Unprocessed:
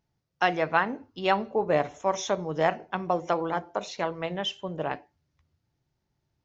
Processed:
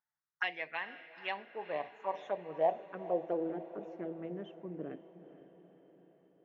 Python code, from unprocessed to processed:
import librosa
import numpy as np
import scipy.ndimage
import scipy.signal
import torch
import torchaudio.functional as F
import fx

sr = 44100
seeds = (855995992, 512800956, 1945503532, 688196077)

y = fx.env_phaser(x, sr, low_hz=450.0, high_hz=1400.0, full_db=-21.5)
y = fx.filter_sweep_bandpass(y, sr, from_hz=1900.0, to_hz=330.0, start_s=1.13, end_s=3.69, q=2.1)
y = fx.echo_diffused(y, sr, ms=466, feedback_pct=57, wet_db=-14.0)